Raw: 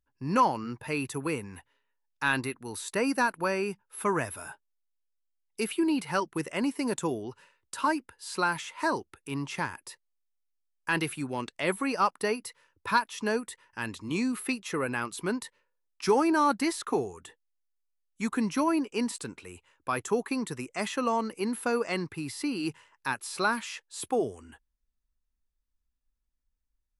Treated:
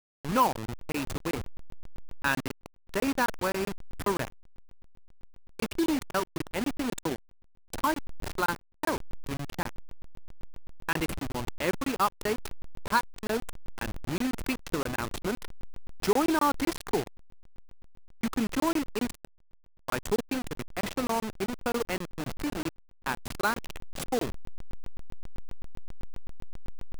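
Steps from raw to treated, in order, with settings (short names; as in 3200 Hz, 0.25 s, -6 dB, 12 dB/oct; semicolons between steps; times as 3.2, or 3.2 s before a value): level-crossing sampler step -27.5 dBFS; crackling interface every 0.13 s, samples 1024, zero, from 0.53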